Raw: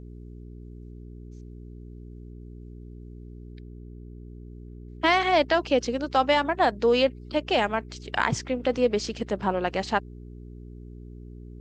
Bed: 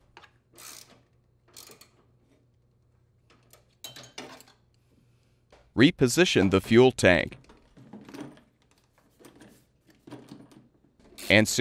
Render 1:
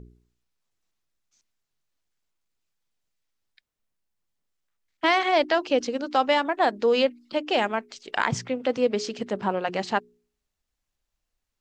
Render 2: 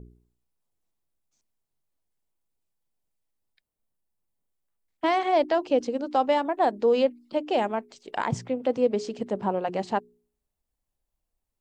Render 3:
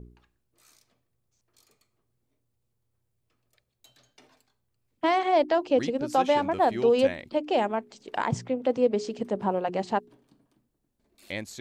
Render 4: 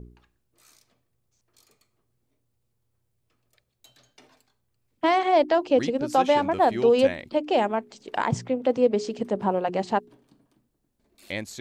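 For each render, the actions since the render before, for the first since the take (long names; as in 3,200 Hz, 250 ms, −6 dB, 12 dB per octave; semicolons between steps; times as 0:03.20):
hum removal 60 Hz, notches 7
flat-topped bell 2,900 Hz −8.5 dB 2.8 octaves
mix in bed −15.5 dB
level +2.5 dB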